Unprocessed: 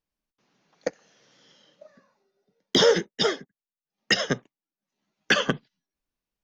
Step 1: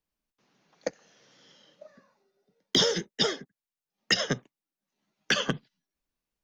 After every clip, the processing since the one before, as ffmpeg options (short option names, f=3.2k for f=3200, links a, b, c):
-filter_complex "[0:a]acrossover=split=170|3000[a][b][c];[b]acompressor=threshold=-26dB:ratio=6[d];[a][d][c]amix=inputs=3:normalize=0"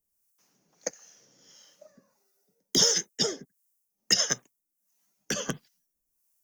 -filter_complex "[0:a]acrossover=split=640[a][b];[a]aeval=exprs='val(0)*(1-0.7/2+0.7/2*cos(2*PI*1.5*n/s))':c=same[c];[b]aeval=exprs='val(0)*(1-0.7/2-0.7/2*cos(2*PI*1.5*n/s))':c=same[d];[c][d]amix=inputs=2:normalize=0,aexciter=amount=6:drive=7.3:freq=5.6k"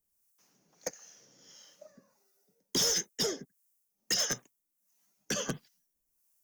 -af "asoftclip=type=tanh:threshold=-24.5dB"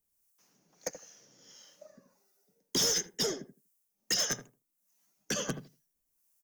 -filter_complex "[0:a]asplit=2[a][b];[b]adelay=80,lowpass=f=800:p=1,volume=-9dB,asplit=2[c][d];[d]adelay=80,lowpass=f=800:p=1,volume=0.19,asplit=2[e][f];[f]adelay=80,lowpass=f=800:p=1,volume=0.19[g];[a][c][e][g]amix=inputs=4:normalize=0"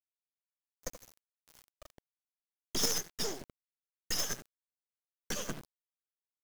-af "acrusher=bits=5:dc=4:mix=0:aa=0.000001"